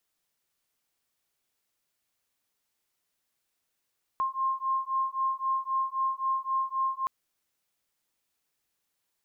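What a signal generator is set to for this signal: beating tones 1060 Hz, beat 3.8 Hz, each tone -29.5 dBFS 2.87 s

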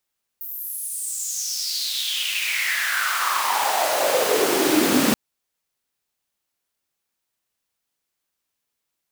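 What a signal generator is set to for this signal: swept filtered noise pink, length 4.73 s highpass, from 15000 Hz, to 220 Hz, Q 5.7, exponential, gain ramp +10 dB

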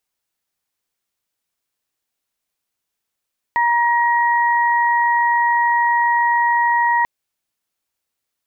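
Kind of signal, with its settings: steady additive tone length 3.49 s, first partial 947 Hz, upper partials -4 dB, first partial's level -14.5 dB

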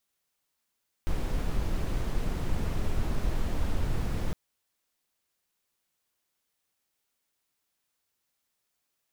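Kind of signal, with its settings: noise brown, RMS -27 dBFS 3.26 s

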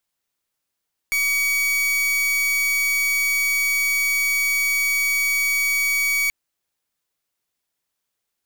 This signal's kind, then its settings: pulse 2260 Hz, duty 44% -20.5 dBFS 5.18 s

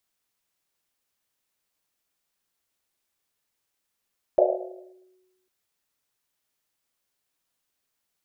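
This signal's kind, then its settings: Risset drum, pitch 370 Hz, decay 1.31 s, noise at 600 Hz, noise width 200 Hz, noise 70%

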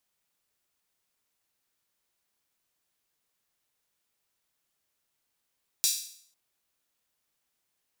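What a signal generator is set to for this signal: open hi-hat length 0.50 s, high-pass 4700 Hz, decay 0.59 s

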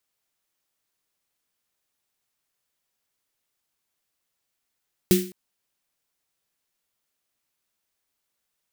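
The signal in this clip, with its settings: snare drum length 0.21 s, tones 190 Hz, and 360 Hz, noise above 1800 Hz, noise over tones -7 dB, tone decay 0.39 s, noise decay 0.38 s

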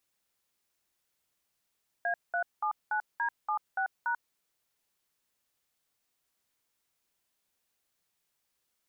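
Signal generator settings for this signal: DTMF "A379D76#", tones 90 ms, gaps 0.197 s, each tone -30 dBFS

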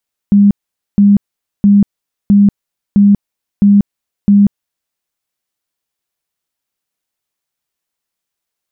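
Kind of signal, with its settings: tone bursts 202 Hz, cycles 38, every 0.66 s, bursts 7, -3.5 dBFS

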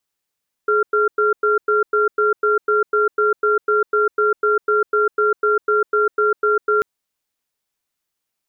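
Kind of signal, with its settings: cadence 422 Hz, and 1380 Hz, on 0.15 s, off 0.10 s, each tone -16 dBFS 6.14 s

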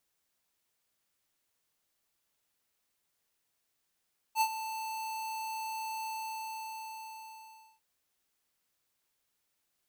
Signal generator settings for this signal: ADSR square 884 Hz, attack 60 ms, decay 67 ms, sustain -12.5 dB, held 1.71 s, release 1.74 s -25.5 dBFS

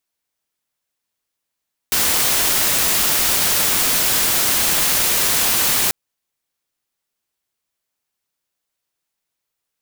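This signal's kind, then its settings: noise white, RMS -17 dBFS 3.99 s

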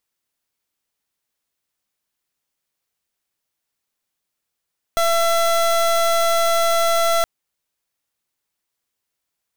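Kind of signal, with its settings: pulse 672 Hz, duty 27% -17 dBFS 2.27 s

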